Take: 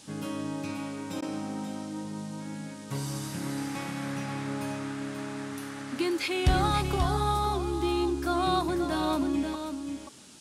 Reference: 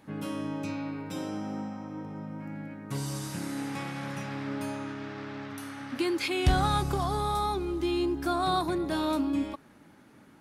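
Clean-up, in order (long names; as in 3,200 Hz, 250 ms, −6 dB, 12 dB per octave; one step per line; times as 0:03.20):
repair the gap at 0:01.21, 11 ms
noise reduction from a noise print 6 dB
echo removal 534 ms −7.5 dB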